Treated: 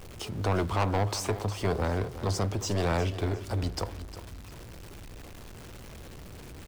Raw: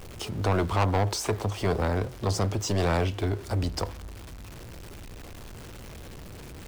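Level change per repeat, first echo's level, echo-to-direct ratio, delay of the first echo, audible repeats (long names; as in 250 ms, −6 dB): −10.0 dB, −13.5 dB, −13.0 dB, 356 ms, 2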